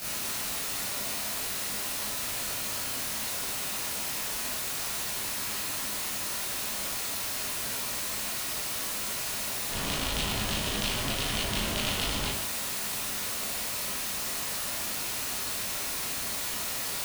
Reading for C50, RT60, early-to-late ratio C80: 2.0 dB, 0.55 s, 6.0 dB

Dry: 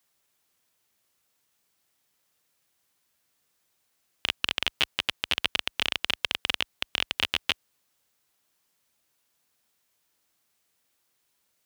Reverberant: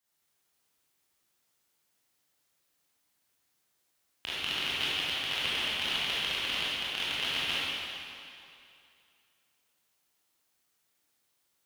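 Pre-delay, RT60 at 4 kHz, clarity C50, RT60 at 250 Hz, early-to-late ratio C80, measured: 19 ms, 2.3 s, -5.5 dB, 2.3 s, -3.0 dB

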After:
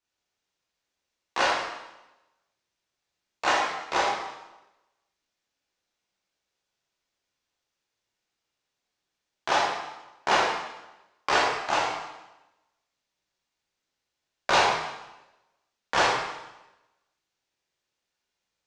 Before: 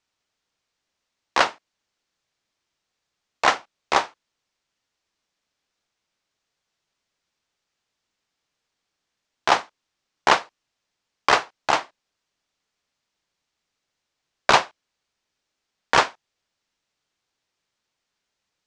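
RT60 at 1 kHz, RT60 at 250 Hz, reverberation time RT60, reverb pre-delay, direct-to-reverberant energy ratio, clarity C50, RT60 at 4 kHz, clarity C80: 1.0 s, 1.0 s, 1.0 s, 7 ms, -7.0 dB, -0.5 dB, 0.90 s, 3.0 dB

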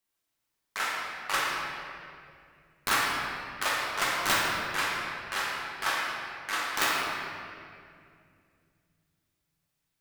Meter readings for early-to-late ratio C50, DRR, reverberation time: -1.5 dB, -5.0 dB, 2.4 s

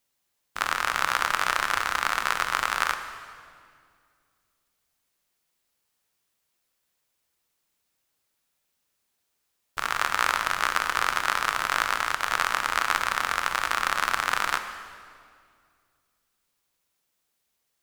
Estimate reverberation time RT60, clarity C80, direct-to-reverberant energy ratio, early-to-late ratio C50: 2.2 s, 9.5 dB, 7.5 dB, 9.0 dB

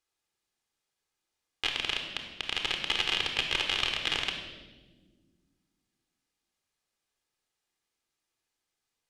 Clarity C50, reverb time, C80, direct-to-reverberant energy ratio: 5.5 dB, 1.4 s, 7.5 dB, 3.5 dB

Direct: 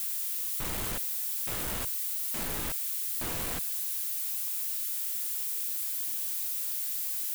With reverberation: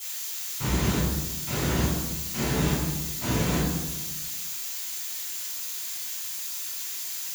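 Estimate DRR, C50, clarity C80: -11.5 dB, 0.0 dB, 3.5 dB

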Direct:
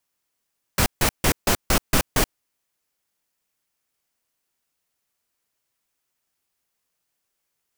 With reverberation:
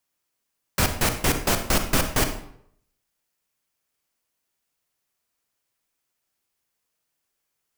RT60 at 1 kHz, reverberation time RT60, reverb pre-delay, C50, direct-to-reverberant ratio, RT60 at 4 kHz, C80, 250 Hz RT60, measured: 0.65 s, 0.70 s, 39 ms, 8.5 dB, 6.5 dB, 0.50 s, 12.0 dB, 0.65 s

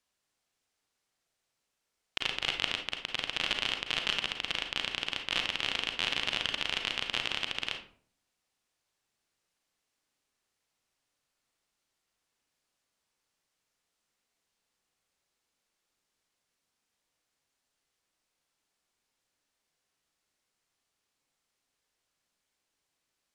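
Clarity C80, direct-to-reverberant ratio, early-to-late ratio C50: 12.5 dB, 4.0 dB, 6.5 dB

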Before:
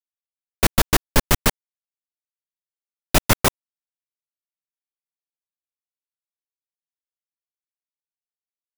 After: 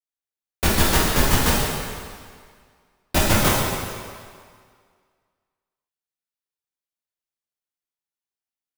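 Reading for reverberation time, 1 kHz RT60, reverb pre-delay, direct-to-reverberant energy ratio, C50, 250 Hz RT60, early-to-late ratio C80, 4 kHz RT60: 1.9 s, 2.0 s, 8 ms, -6.5 dB, -1.5 dB, 1.8 s, 1.0 dB, 1.7 s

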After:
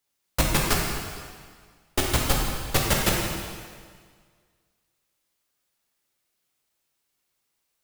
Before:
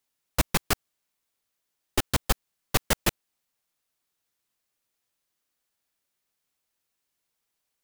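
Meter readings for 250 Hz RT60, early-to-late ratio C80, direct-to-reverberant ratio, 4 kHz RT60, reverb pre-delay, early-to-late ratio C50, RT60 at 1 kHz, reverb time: 1.8 s, 3.0 dB, -2.0 dB, 1.6 s, 5 ms, 1.0 dB, 1.8 s, 1.8 s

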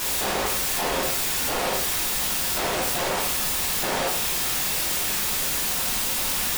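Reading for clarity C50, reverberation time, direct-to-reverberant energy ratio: 6.0 dB, 0.55 s, -4.5 dB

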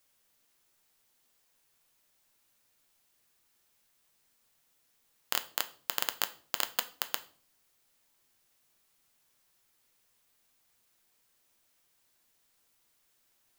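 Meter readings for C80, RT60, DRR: 21.0 dB, 0.45 s, 9.0 dB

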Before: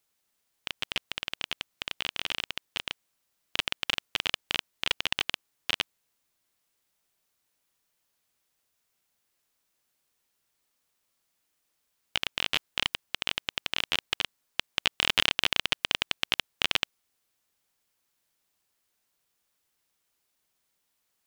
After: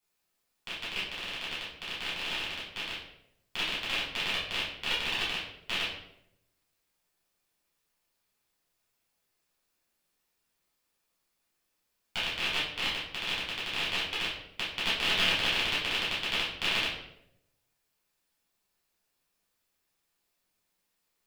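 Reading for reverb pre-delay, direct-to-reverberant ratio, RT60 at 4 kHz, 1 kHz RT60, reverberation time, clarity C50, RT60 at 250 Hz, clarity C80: 7 ms, -9.5 dB, 0.55 s, 0.65 s, 0.80 s, 2.5 dB, 0.95 s, 7.0 dB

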